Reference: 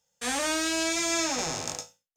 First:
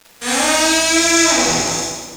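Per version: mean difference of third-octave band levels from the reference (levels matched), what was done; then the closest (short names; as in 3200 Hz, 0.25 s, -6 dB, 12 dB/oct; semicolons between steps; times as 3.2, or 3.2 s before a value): 4.0 dB: crackle 180/s -37 dBFS; split-band echo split 580 Hz, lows 0.313 s, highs 0.142 s, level -14.5 dB; Schroeder reverb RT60 0.97 s, combs from 33 ms, DRR -6.5 dB; gain +6.5 dB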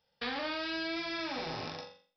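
9.0 dB: compressor 12:1, threshold -35 dBFS, peak gain reduction 12 dB; on a send: flutter echo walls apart 7.3 m, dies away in 0.42 s; on the sum: downsampling 11025 Hz; gain +2.5 dB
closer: first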